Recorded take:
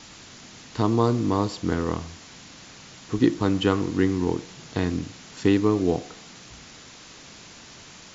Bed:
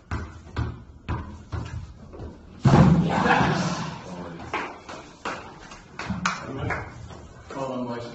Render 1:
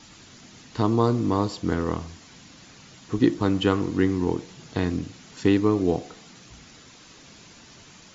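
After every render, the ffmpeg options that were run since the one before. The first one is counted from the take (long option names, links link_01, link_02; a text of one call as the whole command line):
ffmpeg -i in.wav -af "afftdn=noise_reduction=6:noise_floor=-46" out.wav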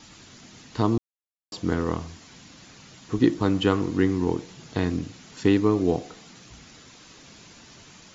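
ffmpeg -i in.wav -filter_complex "[0:a]asplit=3[link_01][link_02][link_03];[link_01]atrim=end=0.98,asetpts=PTS-STARTPTS,afade=type=out:start_time=0.976:duration=0.004:curve=hsin[link_04];[link_02]atrim=start=0.98:end=1.52,asetpts=PTS-STARTPTS,volume=0[link_05];[link_03]atrim=start=1.52,asetpts=PTS-STARTPTS,afade=type=in:duration=0.004:curve=hsin[link_06];[link_04][link_05][link_06]concat=n=3:v=0:a=1" out.wav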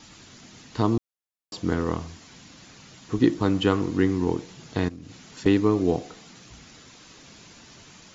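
ffmpeg -i in.wav -filter_complex "[0:a]asettb=1/sr,asplit=3[link_01][link_02][link_03];[link_01]atrim=end=4.884[link_04];[link_02]atrim=start=4.88:end=5.46,asetpts=PTS-STARTPTS,afade=type=in:duration=0.004:curve=qsin,afade=type=out:start_time=0.576:duration=0.004:curve=qsin,acompressor=threshold=-36dB:ratio=10:attack=3.2:release=140:knee=1:detection=peak[link_05];[link_03]atrim=start=5.456[link_06];[link_04][link_05]acrossfade=duration=0.004:curve1=hsin:curve2=qsin[link_07];[link_07][link_06]acrossfade=duration=0.004:curve1=qsin:curve2=hsin" out.wav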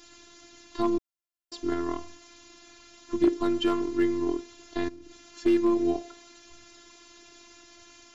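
ffmpeg -i in.wav -af "afftfilt=real='hypot(re,im)*cos(PI*b)':imag='0':win_size=512:overlap=0.75,aeval=exprs='clip(val(0),-1,0.188)':channel_layout=same" out.wav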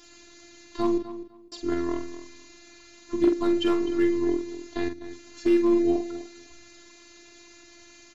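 ffmpeg -i in.wav -filter_complex "[0:a]asplit=2[link_01][link_02];[link_02]adelay=46,volume=-7dB[link_03];[link_01][link_03]amix=inputs=2:normalize=0,asplit=2[link_04][link_05];[link_05]adelay=252,lowpass=frequency=4900:poles=1,volume=-13.5dB,asplit=2[link_06][link_07];[link_07]adelay=252,lowpass=frequency=4900:poles=1,volume=0.2[link_08];[link_04][link_06][link_08]amix=inputs=3:normalize=0" out.wav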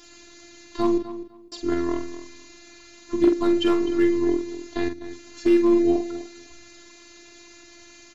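ffmpeg -i in.wav -af "volume=3dB" out.wav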